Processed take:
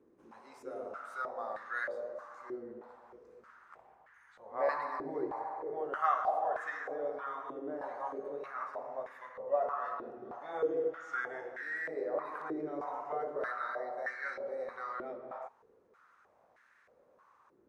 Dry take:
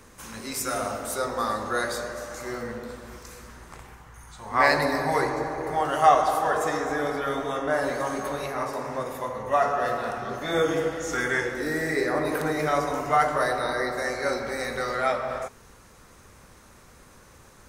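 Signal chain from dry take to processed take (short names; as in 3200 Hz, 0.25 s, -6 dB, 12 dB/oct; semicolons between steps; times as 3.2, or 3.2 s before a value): stepped band-pass 3.2 Hz 350–1700 Hz; gain -3.5 dB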